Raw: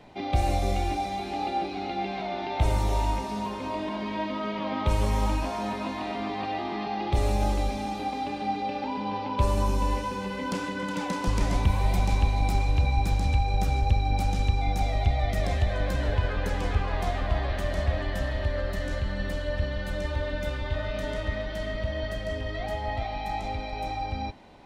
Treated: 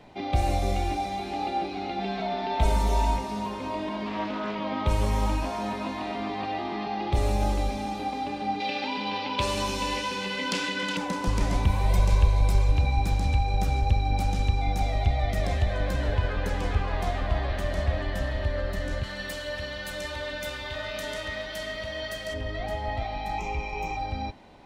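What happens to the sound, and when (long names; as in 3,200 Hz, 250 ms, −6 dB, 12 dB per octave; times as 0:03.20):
0:01.99–0:03.17: comb filter 4.5 ms, depth 72%
0:04.06–0:04.56: highs frequency-modulated by the lows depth 0.21 ms
0:08.60–0:10.97: meter weighting curve D
0:11.89–0:12.72: comb filter 1.9 ms, depth 60%
0:19.03–0:22.34: spectral tilt +3 dB per octave
0:23.38–0:23.97: EQ curve with evenly spaced ripples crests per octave 0.75, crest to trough 14 dB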